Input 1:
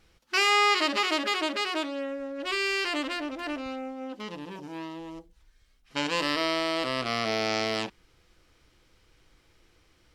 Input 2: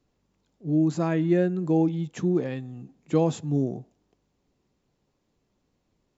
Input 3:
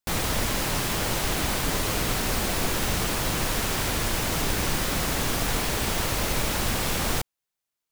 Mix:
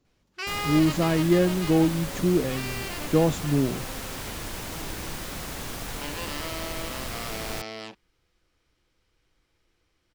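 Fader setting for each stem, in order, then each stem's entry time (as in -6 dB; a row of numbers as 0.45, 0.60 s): -9.0, +1.5, -9.0 dB; 0.05, 0.00, 0.40 s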